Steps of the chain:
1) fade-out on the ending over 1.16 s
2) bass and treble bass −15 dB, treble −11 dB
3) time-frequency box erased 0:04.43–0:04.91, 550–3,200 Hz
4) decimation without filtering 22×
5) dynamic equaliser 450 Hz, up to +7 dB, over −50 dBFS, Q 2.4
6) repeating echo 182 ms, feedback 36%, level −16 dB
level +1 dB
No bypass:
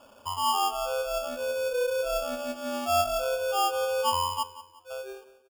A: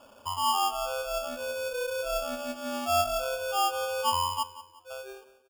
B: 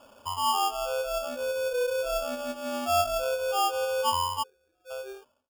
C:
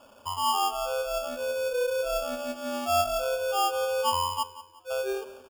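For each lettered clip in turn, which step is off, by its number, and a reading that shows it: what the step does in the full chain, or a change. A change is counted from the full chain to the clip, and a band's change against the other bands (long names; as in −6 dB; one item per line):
5, change in integrated loudness −1.5 LU
6, change in momentary loudness spread −2 LU
1, change in momentary loudness spread −6 LU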